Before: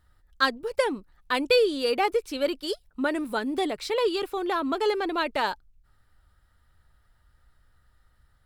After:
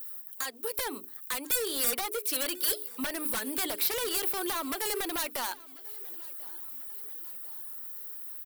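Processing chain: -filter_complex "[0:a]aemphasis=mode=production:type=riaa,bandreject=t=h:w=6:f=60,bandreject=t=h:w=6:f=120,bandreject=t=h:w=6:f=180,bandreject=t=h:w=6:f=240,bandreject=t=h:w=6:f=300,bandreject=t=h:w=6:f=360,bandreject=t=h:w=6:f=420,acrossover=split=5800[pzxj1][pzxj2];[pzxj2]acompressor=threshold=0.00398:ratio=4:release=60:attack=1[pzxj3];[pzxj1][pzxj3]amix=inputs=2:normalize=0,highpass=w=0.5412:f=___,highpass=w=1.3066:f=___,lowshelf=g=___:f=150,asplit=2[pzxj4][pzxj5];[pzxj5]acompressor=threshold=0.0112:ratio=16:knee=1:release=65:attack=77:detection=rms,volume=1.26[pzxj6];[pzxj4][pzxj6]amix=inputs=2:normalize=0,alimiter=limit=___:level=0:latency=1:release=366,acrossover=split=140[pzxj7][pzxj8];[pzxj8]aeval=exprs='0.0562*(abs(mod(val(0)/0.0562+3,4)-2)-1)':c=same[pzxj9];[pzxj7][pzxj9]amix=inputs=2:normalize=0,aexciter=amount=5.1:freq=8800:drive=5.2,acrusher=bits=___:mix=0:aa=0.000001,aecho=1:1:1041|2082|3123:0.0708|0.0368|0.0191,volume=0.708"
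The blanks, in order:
43, 43, -11, 0.178, 10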